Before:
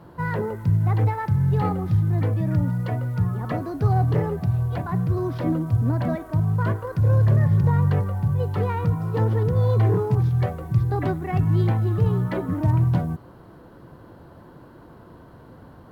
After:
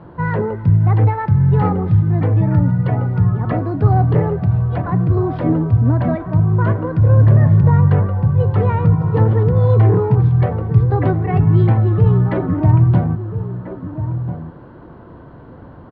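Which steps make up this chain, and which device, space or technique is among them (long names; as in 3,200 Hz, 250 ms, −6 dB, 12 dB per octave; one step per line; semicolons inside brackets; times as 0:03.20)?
shout across a valley (high-frequency loss of the air 340 metres; slap from a distant wall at 230 metres, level −10 dB)
level +7.5 dB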